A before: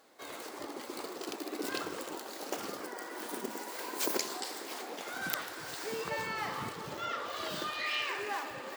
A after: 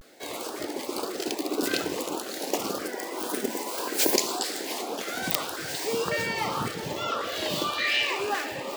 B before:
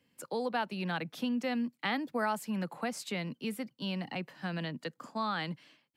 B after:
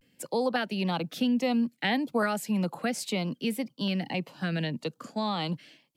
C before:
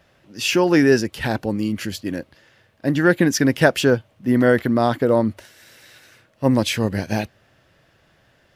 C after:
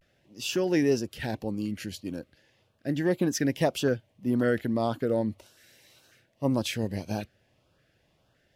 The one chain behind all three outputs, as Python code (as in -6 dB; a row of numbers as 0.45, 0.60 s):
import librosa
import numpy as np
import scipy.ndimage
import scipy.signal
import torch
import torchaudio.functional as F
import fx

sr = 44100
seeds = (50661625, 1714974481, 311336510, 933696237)

y = fx.filter_lfo_notch(x, sr, shape='saw_up', hz=1.8, low_hz=860.0, high_hz=2200.0, q=1.4)
y = fx.vibrato(y, sr, rate_hz=0.36, depth_cents=50.0)
y = y * 10.0 ** (-30 / 20.0) / np.sqrt(np.mean(np.square(y)))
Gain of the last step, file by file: +10.5, +7.0, -9.0 dB